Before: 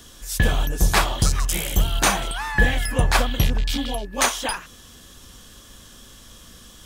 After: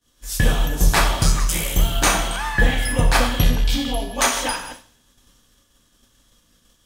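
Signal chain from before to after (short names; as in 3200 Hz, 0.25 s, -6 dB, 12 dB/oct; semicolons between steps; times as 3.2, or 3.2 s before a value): reverse delay 0.139 s, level -13 dB; two-slope reverb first 0.73 s, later 1.9 s, DRR 3 dB; expander -32 dBFS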